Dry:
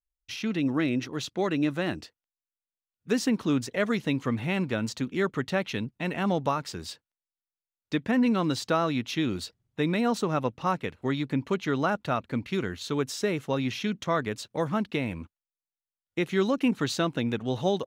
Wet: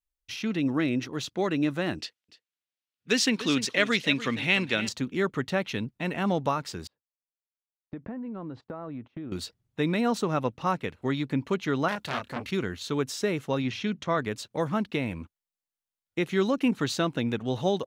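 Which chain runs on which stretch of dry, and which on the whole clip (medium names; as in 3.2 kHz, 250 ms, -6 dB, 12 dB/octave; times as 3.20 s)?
1.99–4.89 s: frequency weighting D + delay 294 ms -14 dB + tape noise reduction on one side only decoder only
6.87–9.32 s: low-pass 1.1 kHz + gate -46 dBFS, range -21 dB + compression 16:1, threshold -33 dBFS
11.88–12.51 s: treble shelf 3 kHz +9 dB + doubling 29 ms -5.5 dB + transformer saturation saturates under 3 kHz
13.62–14.18 s: distance through air 55 m + hum notches 50/100/150 Hz
whole clip: none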